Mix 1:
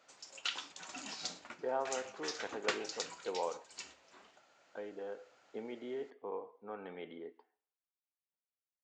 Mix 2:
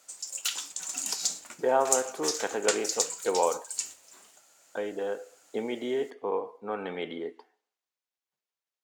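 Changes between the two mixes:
speech +11.5 dB
master: remove Gaussian smoothing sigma 2.1 samples

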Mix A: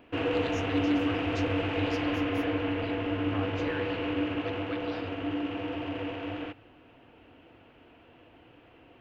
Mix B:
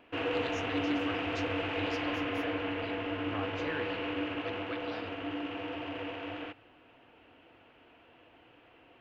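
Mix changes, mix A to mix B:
background: add low-shelf EQ 410 Hz −9 dB
master: add high-shelf EQ 7,800 Hz −6.5 dB

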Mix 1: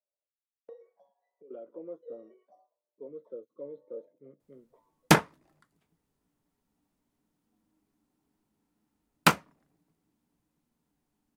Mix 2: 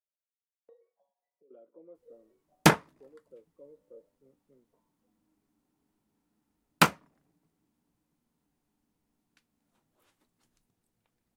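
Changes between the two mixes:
speech −11.0 dB
background: entry −2.45 s

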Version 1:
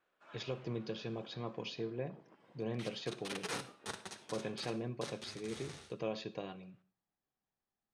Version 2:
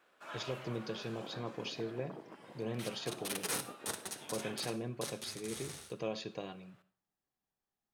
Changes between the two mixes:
first sound +10.5 dB
master: remove high-frequency loss of the air 86 metres

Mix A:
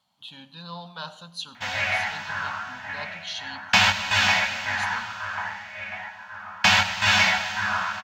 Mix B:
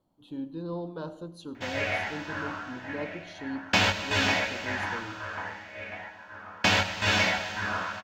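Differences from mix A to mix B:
speech: remove meter weighting curve D
master: remove drawn EQ curve 220 Hz 0 dB, 330 Hz −26 dB, 780 Hz +6 dB

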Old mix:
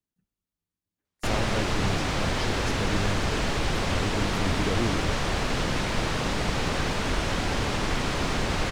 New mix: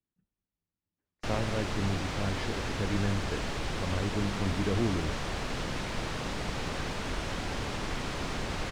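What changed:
speech: add high-frequency loss of the air 240 metres
background −7.5 dB

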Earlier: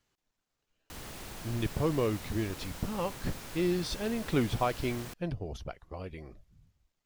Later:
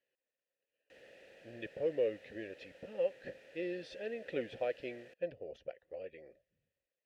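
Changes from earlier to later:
speech +5.0 dB
master: add formant filter e

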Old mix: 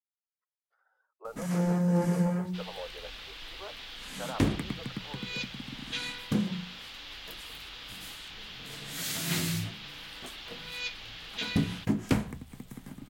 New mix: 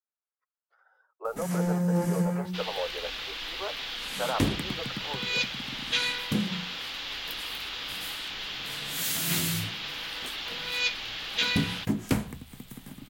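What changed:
speech +8.5 dB
first sound: add high-shelf EQ 9,300 Hz +10.5 dB
second sound +8.5 dB

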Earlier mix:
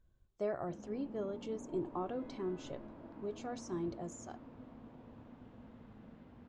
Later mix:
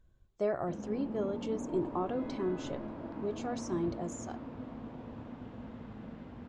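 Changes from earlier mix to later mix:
speech +5.0 dB
background +9.5 dB

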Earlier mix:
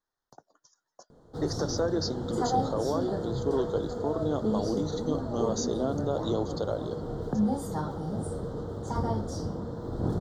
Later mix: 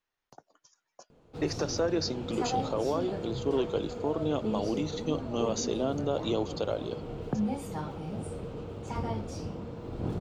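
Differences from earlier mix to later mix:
background −4.0 dB
master: remove Butterworth band-reject 2,500 Hz, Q 1.3

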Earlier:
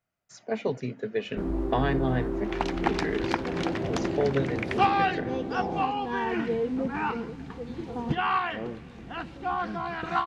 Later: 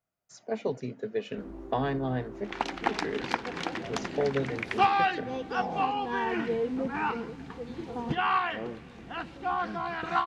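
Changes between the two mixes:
speech: add parametric band 2,200 Hz −6.5 dB 1.9 octaves
first sound −11.0 dB
master: add low-shelf EQ 250 Hz −5.5 dB

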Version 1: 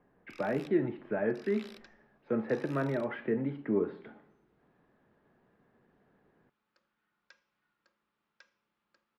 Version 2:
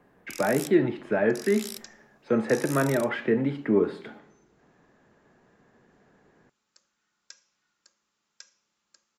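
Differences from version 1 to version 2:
speech +6.5 dB
master: remove high-frequency loss of the air 390 metres

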